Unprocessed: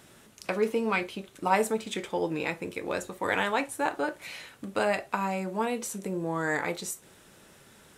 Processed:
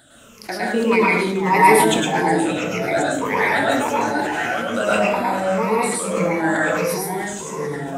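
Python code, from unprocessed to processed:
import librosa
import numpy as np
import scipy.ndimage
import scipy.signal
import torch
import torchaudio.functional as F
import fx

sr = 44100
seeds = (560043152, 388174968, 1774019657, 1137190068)

y = fx.spec_ripple(x, sr, per_octave=0.81, drift_hz=-1.7, depth_db=18)
y = fx.hum_notches(y, sr, base_hz=50, count=7)
y = fx.echo_pitch(y, sr, ms=331, semitones=-3, count=3, db_per_echo=-6.0)
y = fx.rev_plate(y, sr, seeds[0], rt60_s=0.58, hf_ratio=0.75, predelay_ms=95, drr_db=-5.5)
y = fx.sustainer(y, sr, db_per_s=30.0)
y = y * librosa.db_to_amplitude(-1.0)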